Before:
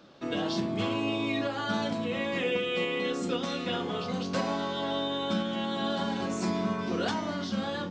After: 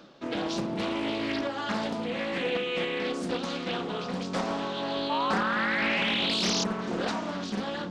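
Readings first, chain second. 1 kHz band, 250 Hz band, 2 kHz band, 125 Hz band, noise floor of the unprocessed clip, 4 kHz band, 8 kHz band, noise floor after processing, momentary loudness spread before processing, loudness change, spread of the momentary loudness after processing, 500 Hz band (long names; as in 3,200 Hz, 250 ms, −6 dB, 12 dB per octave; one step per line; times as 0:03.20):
+2.5 dB, −0.5 dB, +5.0 dB, −2.0 dB, −35 dBFS, +3.5 dB, +6.5 dB, −36 dBFS, 3 LU, +1.5 dB, 8 LU, 0.0 dB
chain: parametric band 100 Hz −13 dB 0.35 octaves
reversed playback
upward compression, threshold −35 dBFS
reversed playback
sound drawn into the spectrogram rise, 0:05.09–0:06.64, 850–5,100 Hz −29 dBFS
highs frequency-modulated by the lows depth 0.61 ms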